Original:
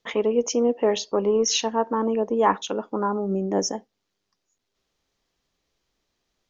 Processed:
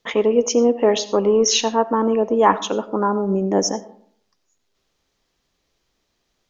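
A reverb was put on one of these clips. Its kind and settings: digital reverb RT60 0.61 s, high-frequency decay 0.45×, pre-delay 45 ms, DRR 15.5 dB; gain +5 dB

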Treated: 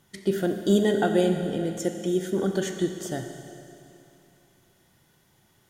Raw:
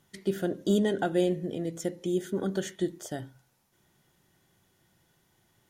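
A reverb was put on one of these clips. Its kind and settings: Schroeder reverb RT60 2.8 s, combs from 29 ms, DRR 5.5 dB; gain +4 dB

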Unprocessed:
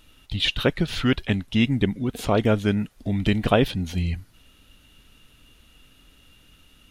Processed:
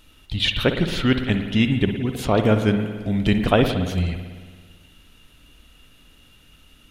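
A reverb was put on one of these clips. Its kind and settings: spring tank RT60 1.6 s, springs 55 ms, chirp 20 ms, DRR 6.5 dB; gain +1.5 dB

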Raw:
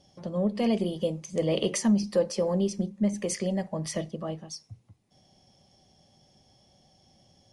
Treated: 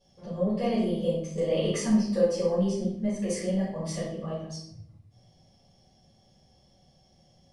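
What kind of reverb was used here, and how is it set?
shoebox room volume 150 m³, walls mixed, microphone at 4.2 m; gain -14.5 dB

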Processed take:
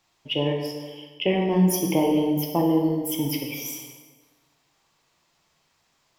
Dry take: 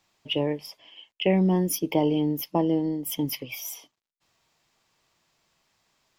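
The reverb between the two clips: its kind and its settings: plate-style reverb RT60 1.5 s, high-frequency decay 0.7×, DRR 0.5 dB

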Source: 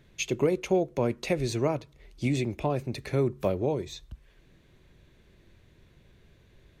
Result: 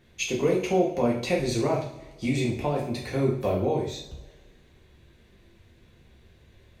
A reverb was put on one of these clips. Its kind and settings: two-slope reverb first 0.51 s, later 1.7 s, from -18 dB, DRR -3.5 dB; gain -2 dB

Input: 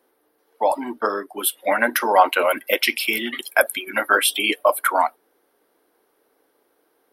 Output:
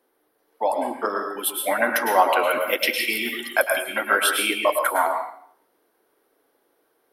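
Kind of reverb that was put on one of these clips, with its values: plate-style reverb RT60 0.59 s, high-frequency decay 0.9×, pre-delay 95 ms, DRR 2.5 dB; gain -3.5 dB

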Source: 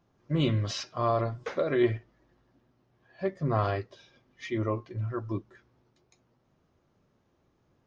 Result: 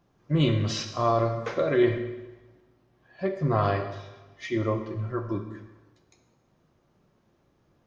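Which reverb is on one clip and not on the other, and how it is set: plate-style reverb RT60 1.2 s, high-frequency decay 0.9×, DRR 5.5 dB; gain +2.5 dB

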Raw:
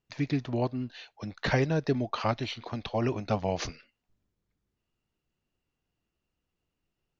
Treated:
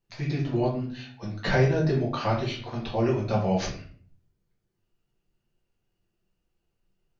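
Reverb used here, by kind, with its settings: shoebox room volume 43 m³, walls mixed, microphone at 1.1 m; gain -4 dB

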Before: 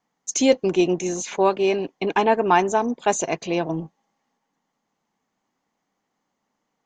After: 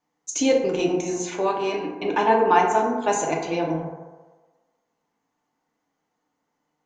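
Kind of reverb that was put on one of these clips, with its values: FDN reverb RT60 1.3 s, low-frequency decay 0.7×, high-frequency decay 0.35×, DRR -2 dB; gain -4.5 dB

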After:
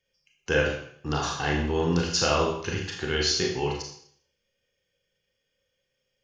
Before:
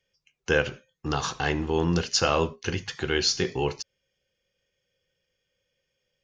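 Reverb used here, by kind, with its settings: Schroeder reverb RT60 0.6 s, combs from 27 ms, DRR -0.5 dB; gain -3 dB

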